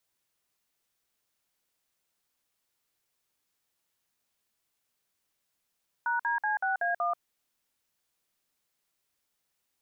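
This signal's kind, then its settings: DTMF "#DC6A1", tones 135 ms, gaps 53 ms, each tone -28.5 dBFS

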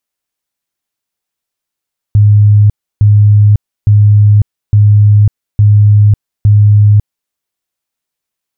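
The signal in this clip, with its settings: tone bursts 104 Hz, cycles 57, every 0.86 s, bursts 6, -2 dBFS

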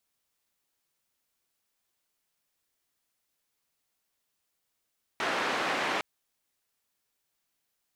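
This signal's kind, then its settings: noise band 290–1900 Hz, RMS -30 dBFS 0.81 s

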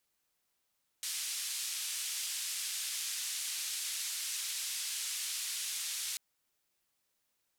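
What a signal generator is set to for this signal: noise band 2.7–10 kHz, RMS -38 dBFS 5.14 s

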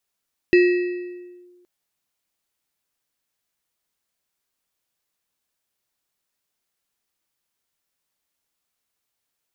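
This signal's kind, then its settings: FM tone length 1.12 s, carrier 356 Hz, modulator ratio 6.35, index 0.51, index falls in 0.95 s linear, decay 1.50 s, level -9 dB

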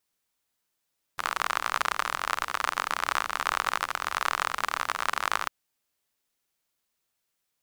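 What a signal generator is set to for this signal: rain from filtered ticks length 4.30 s, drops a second 49, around 1.2 kHz, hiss -21.5 dB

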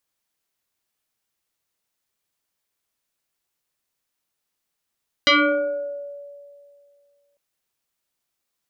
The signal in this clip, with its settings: FM tone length 2.10 s, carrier 571 Hz, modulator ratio 1.52, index 4.7, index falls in 1.02 s exponential, decay 2.28 s, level -11 dB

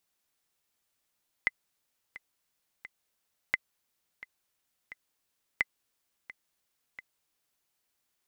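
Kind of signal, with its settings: metronome 87 bpm, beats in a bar 3, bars 3, 2.04 kHz, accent 18 dB -12 dBFS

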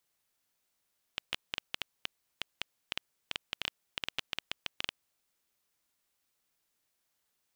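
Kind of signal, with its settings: random clicks 7.1 per s -14.5 dBFS 4.23 s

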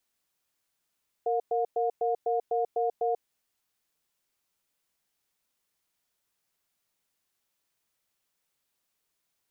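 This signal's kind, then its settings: cadence 463 Hz, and 715 Hz, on 0.14 s, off 0.11 s, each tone -27 dBFS 1.89 s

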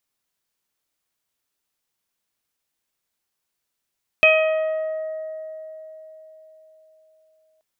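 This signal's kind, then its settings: additive tone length 3.38 s, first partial 631 Hz, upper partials -11/-13.5/5.5/-12 dB, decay 4.34 s, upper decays 1.81/2.42/0.70/0.90 s, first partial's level -14.5 dB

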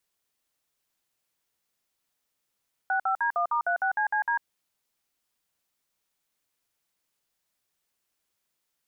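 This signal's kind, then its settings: DTMF "65D1*36CCD", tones 98 ms, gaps 55 ms, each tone -25.5 dBFS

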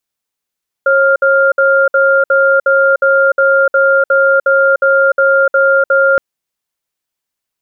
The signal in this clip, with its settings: cadence 544 Hz, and 1.4 kHz, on 0.30 s, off 0.06 s, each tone -9.5 dBFS 5.32 s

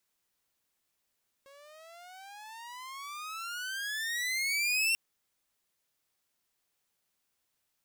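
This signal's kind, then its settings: gliding synth tone saw, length 3.49 s, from 544 Hz, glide +28 st, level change +28.5 dB, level -22 dB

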